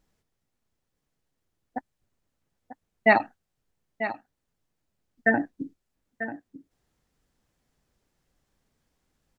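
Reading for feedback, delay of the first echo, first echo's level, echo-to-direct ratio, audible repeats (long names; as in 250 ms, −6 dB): repeats not evenly spaced, 942 ms, −11.5 dB, −11.5 dB, 1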